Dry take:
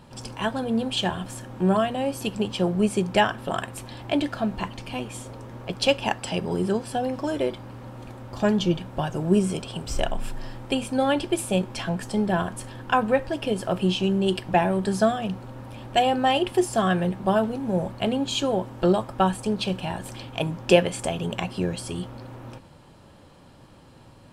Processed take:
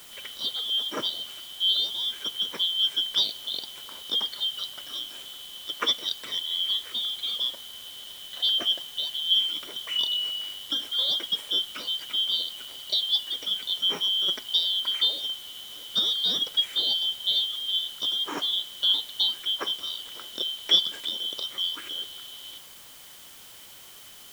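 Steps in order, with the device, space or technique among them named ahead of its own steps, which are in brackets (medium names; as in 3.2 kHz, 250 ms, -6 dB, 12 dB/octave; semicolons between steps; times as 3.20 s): split-band scrambled radio (four frequency bands reordered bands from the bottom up 3412; band-pass 400–3100 Hz; white noise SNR 19 dB)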